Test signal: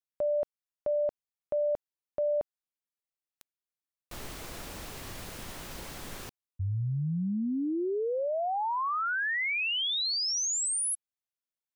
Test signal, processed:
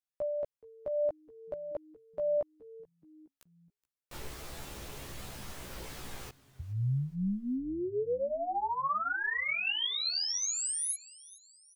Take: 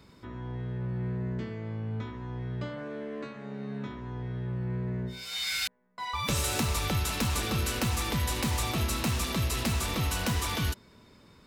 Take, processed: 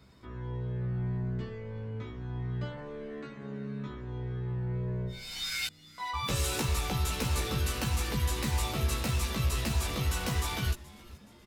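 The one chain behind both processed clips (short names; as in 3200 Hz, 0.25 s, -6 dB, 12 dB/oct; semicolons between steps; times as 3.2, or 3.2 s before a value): chorus voices 4, 0.21 Hz, delay 15 ms, depth 1.4 ms; frequency-shifting echo 0.424 s, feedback 45%, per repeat -140 Hz, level -20.5 dB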